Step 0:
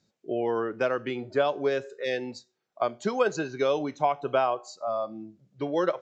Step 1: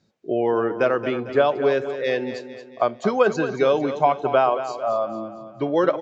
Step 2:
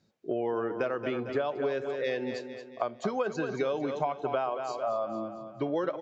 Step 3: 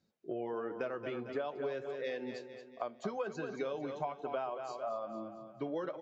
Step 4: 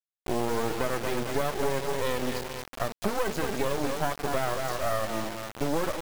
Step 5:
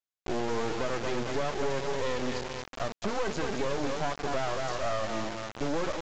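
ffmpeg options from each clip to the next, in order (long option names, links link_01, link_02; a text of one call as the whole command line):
ffmpeg -i in.wav -af "aemphasis=mode=reproduction:type=50kf,aecho=1:1:225|450|675|900|1125:0.282|0.132|0.0623|0.0293|0.0138,volume=6.5dB" out.wav
ffmpeg -i in.wav -af "acompressor=threshold=-23dB:ratio=5,volume=-4dB" out.wav
ffmpeg -i in.wav -af "flanger=delay=3.7:depth=2.4:regen=-62:speed=1.4:shape=triangular,volume=-3.5dB" out.wav
ffmpeg -i in.wav -filter_complex "[0:a]asplit=2[link_01][link_02];[link_02]alimiter=level_in=8.5dB:limit=-24dB:level=0:latency=1,volume=-8.5dB,volume=2.5dB[link_03];[link_01][link_03]amix=inputs=2:normalize=0,acrusher=bits=4:dc=4:mix=0:aa=0.000001,volume=7.5dB" out.wav
ffmpeg -i in.wav -af "asoftclip=type=tanh:threshold=-19.5dB,aresample=16000,aresample=44100" out.wav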